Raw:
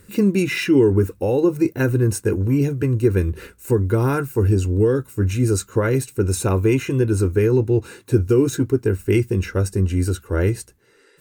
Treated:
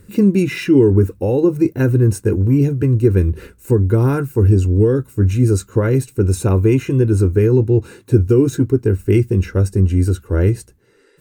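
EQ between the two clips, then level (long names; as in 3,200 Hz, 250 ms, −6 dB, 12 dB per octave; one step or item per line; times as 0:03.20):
low-shelf EQ 490 Hz +8.5 dB
−2.5 dB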